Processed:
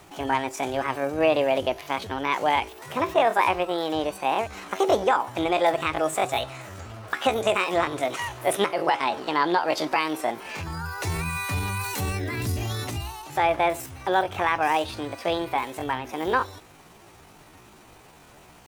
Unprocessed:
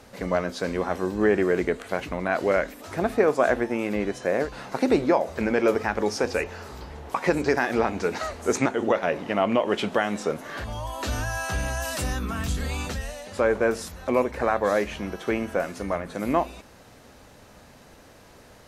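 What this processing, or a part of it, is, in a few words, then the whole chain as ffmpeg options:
chipmunk voice: -af "asetrate=66075,aresample=44100,atempo=0.66742"

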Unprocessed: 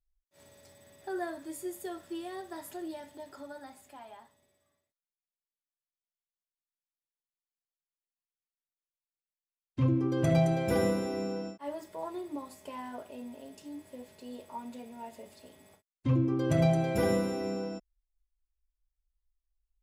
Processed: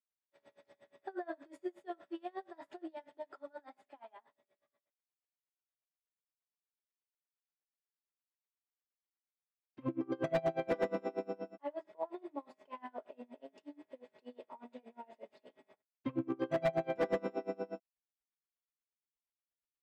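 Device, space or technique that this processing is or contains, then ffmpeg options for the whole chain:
helicopter radio: -af "adynamicequalizer=threshold=0.00501:dfrequency=670:dqfactor=4.1:tfrequency=670:tqfactor=4.1:attack=5:release=100:ratio=0.375:range=2:mode=boostabove:tftype=bell,highpass=300,lowpass=2600,aeval=exprs='val(0)*pow(10,-28*(0.5-0.5*cos(2*PI*8.4*n/s))/20)':channel_layout=same,asoftclip=type=hard:threshold=-27dB,volume=1.5dB"

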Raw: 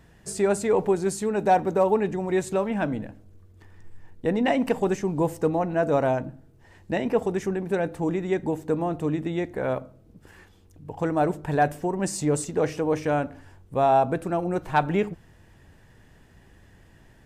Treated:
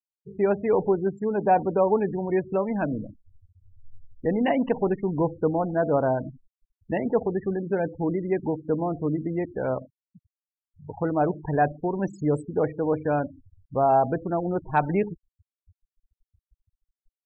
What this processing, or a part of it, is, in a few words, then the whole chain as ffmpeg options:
behind a face mask: -af "lowpass=6900,highshelf=frequency=2600:gain=-6,afftfilt=real='re*gte(hypot(re,im),0.0316)':imag='im*gte(hypot(re,im),0.0316)':win_size=1024:overlap=0.75"

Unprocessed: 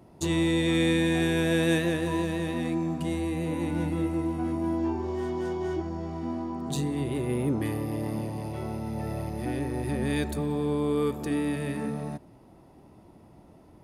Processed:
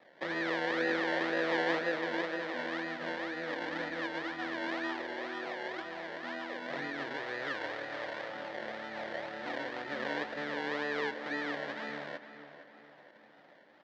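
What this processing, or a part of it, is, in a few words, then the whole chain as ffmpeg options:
circuit-bent sampling toy: -filter_complex "[0:a]equalizer=frequency=100:width_type=o:width=0.67:gain=-4,equalizer=frequency=400:width_type=o:width=0.67:gain=-8,equalizer=frequency=4000:width_type=o:width=0.67:gain=-11,acrusher=samples=28:mix=1:aa=0.000001:lfo=1:lforange=16.8:lforate=2,highpass=520,equalizer=frequency=530:width_type=q:width=4:gain=6,equalizer=frequency=1100:width_type=q:width=4:gain=-5,equalizer=frequency=1800:width_type=q:width=4:gain=9,equalizer=frequency=2600:width_type=q:width=4:gain=-5,lowpass=frequency=4100:width=0.5412,lowpass=frequency=4100:width=1.3066,asplit=2[link_01][link_02];[link_02]adelay=458,lowpass=frequency=4100:poles=1,volume=-12dB,asplit=2[link_03][link_04];[link_04]adelay=458,lowpass=frequency=4100:poles=1,volume=0.48,asplit=2[link_05][link_06];[link_06]adelay=458,lowpass=frequency=4100:poles=1,volume=0.48,asplit=2[link_07][link_08];[link_08]adelay=458,lowpass=frequency=4100:poles=1,volume=0.48,asplit=2[link_09][link_10];[link_10]adelay=458,lowpass=frequency=4100:poles=1,volume=0.48[link_11];[link_01][link_03][link_05][link_07][link_09][link_11]amix=inputs=6:normalize=0,asettb=1/sr,asplit=3[link_12][link_13][link_14];[link_12]atrim=end=7.164[link_15];[link_13]atrim=start=7.16:end=8.29,asetpts=PTS-STARTPTS,afade=type=in:duration=0.004:curve=qsin,afade=type=out:start_time=1.126:duration=0.004:curve=qsin,equalizer=frequency=230:width=2.2:gain=-11.5[link_16];[link_14]atrim=start=8.286[link_17];[link_15][link_16]acrossfade=duration=0.004:curve1=hsin:curve2=qsin[link_18];[link_18][link_17]acrossfade=duration=0.004:curve1=qsin:curve2=hsin"

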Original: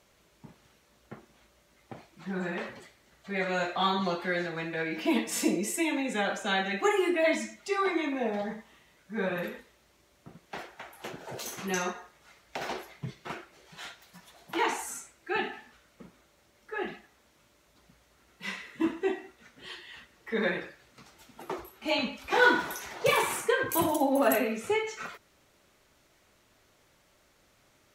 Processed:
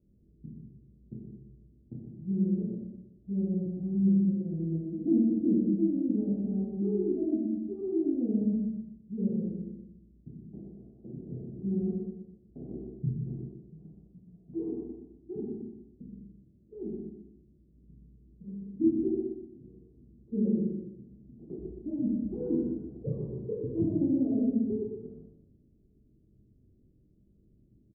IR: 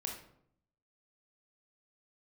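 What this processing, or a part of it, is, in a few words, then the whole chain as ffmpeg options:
next room: -filter_complex "[0:a]lowpass=frequency=300:width=0.5412,lowpass=frequency=300:width=1.3066[link_01];[1:a]atrim=start_sample=2205[link_02];[link_01][link_02]afir=irnorm=-1:irlink=0,asettb=1/sr,asplit=3[link_03][link_04][link_05];[link_03]atrim=end=3.544[link_06];[link_04]atrim=start=3.54:end=4.41,asetpts=PTS-STARTPTS,afade=type=in:duration=0.004:curve=qsin,afade=type=out:start_time=0.866:duration=0.004:curve=qsin,equalizer=frequency=950:width=0.78:gain=-14[link_07];[link_05]atrim=start=4.406[link_08];[link_06][link_07]acrossfade=duration=0.004:curve1=hsin:curve2=qsin[link_09];[link_09][link_08]acrossfade=duration=0.004:curve1=qsin:curve2=hsin,tiltshelf=frequency=1300:gain=8,bandreject=frequency=900:width=6,aecho=1:1:122|244|366|488:0.631|0.196|0.0606|0.0188,volume=-1dB"

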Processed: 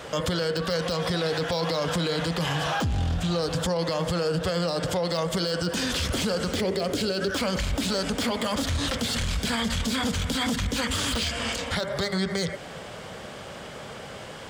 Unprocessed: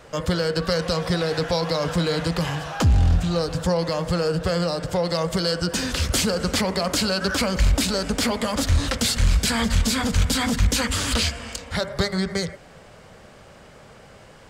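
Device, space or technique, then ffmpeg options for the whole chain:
broadcast voice chain: -filter_complex "[0:a]asettb=1/sr,asplit=3[link_01][link_02][link_03];[link_01]atrim=end=6.544[link_04];[link_02]atrim=start=6.54:end=7.35,asetpts=PTS-STARTPTS,afade=type=in:duration=0.004:curve=qsin,afade=type=out:start_time=0.806:duration=0.004:curve=qsin,equalizer=frequency=100:width_type=o:width=0.67:gain=7,equalizer=frequency=400:width_type=o:width=0.67:gain=10,equalizer=frequency=1000:width_type=o:width=0.67:gain=-8[link_05];[link_03]atrim=start=7.346[link_06];[link_04][link_05]acrossfade=duration=0.004:curve1=hsin:curve2=qsin[link_07];[link_07][link_06]acrossfade=duration=0.004:curve1=qsin:curve2=hsin,highpass=frequency=120:poles=1,deesser=0.55,acompressor=threshold=-30dB:ratio=5,equalizer=frequency=3300:width_type=o:width=0.28:gain=6,alimiter=level_in=2.5dB:limit=-24dB:level=0:latency=1:release=11,volume=-2.5dB,volume=8dB"

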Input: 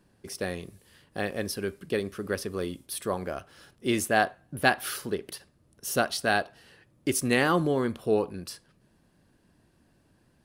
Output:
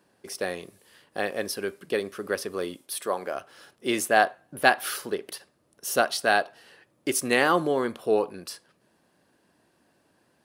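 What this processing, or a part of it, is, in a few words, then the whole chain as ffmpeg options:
filter by subtraction: -filter_complex "[0:a]asplit=2[link_01][link_02];[link_02]lowpass=620,volume=-1[link_03];[link_01][link_03]amix=inputs=2:normalize=0,asettb=1/sr,asplit=3[link_04][link_05][link_06];[link_04]atrim=end=2.774[link_07];[link_05]atrim=start=2.77:end=3.35,asetpts=PTS-STARTPTS,afade=type=in:duration=0.004:curve=qsin,afade=type=out:start_time=0.576:duration=0.004:curve=qsin,highpass=frequency=260:poles=1[link_08];[link_06]atrim=start=3.346[link_09];[link_07][link_08]acrossfade=duration=0.004:curve1=hsin:curve2=qsin[link_10];[link_10][link_09]acrossfade=duration=0.004:curve1=qsin:curve2=hsin,volume=2dB"

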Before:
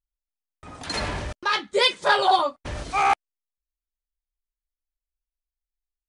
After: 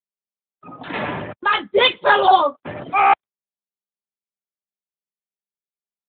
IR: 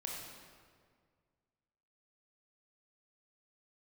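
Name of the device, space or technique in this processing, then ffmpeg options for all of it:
mobile call with aggressive noise cancelling: -af "highpass=frequency=120:width=0.5412,highpass=frequency=120:width=1.3066,afftdn=noise_reduction=20:noise_floor=-40,volume=6.5dB" -ar 8000 -c:a libopencore_amrnb -b:a 12200

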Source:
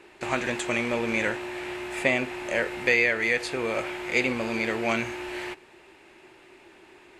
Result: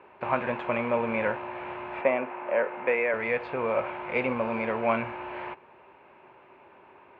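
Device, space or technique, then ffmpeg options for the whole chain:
bass cabinet: -filter_complex "[0:a]highpass=82,equalizer=frequency=330:width_type=q:width=4:gain=-10,equalizer=frequency=560:width_type=q:width=4:gain=5,equalizer=frequency=1000:width_type=q:width=4:gain=8,equalizer=frequency=1900:width_type=q:width=4:gain=-8,lowpass=frequency=2300:width=0.5412,lowpass=frequency=2300:width=1.3066,asettb=1/sr,asplit=3[link_01][link_02][link_03];[link_01]atrim=end=2.014[link_04];[link_02]atrim=start=2.01:end=3.14,asetpts=PTS-STARTPTS,afade=type=in:duration=0.004:curve=qsin,afade=type=out:start_time=1.126:duration=0.004:curve=qsin,acrossover=split=210 3000:gain=0.126 1 0.141[link_05][link_06][link_07];[link_05][link_06][link_07]amix=inputs=3:normalize=0[link_08];[link_03]atrim=start=3.136[link_09];[link_04][link_08]acrossfade=duration=0.004:curve1=hsin:curve2=qsin[link_10];[link_10][link_09]acrossfade=duration=0.004:curve1=qsin:curve2=hsin"

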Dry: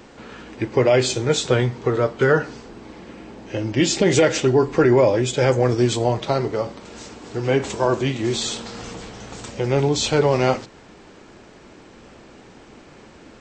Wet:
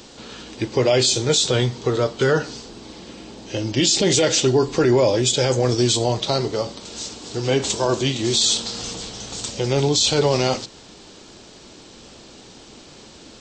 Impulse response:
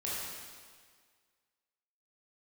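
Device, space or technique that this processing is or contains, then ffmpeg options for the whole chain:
over-bright horn tweeter: -af "highshelf=frequency=2800:width_type=q:width=1.5:gain=9.5,alimiter=limit=-8.5dB:level=0:latency=1:release=23"

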